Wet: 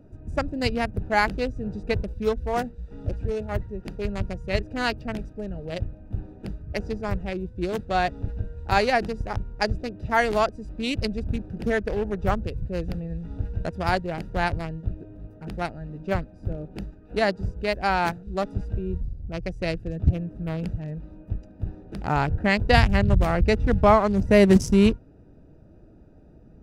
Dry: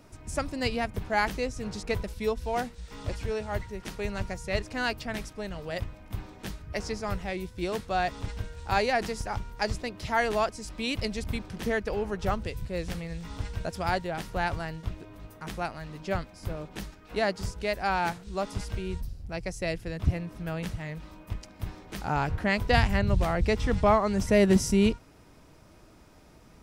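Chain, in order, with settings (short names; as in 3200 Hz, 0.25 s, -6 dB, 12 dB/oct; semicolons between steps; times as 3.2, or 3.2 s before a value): Wiener smoothing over 41 samples; gain +5.5 dB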